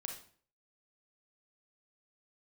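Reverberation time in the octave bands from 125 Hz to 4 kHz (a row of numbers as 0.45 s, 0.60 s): 0.55 s, 0.55 s, 0.50 s, 0.45 s, 0.45 s, 0.40 s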